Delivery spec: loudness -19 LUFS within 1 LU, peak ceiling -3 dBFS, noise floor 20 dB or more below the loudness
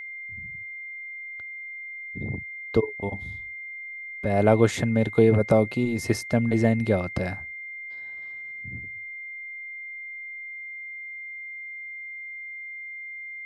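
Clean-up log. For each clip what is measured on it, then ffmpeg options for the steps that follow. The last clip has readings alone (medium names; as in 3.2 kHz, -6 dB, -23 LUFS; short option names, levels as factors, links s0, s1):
steady tone 2.1 kHz; tone level -35 dBFS; loudness -28.0 LUFS; peak level -5.0 dBFS; loudness target -19.0 LUFS
-> -af "bandreject=f=2100:w=30"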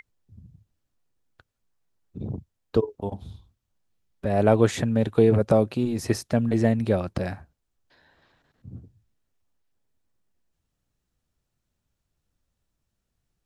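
steady tone not found; loudness -24.0 LUFS; peak level -5.0 dBFS; loudness target -19.0 LUFS
-> -af "volume=1.78,alimiter=limit=0.708:level=0:latency=1"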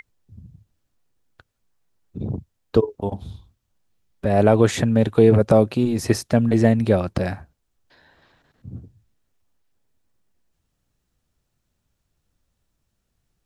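loudness -19.5 LUFS; peak level -3.0 dBFS; noise floor -75 dBFS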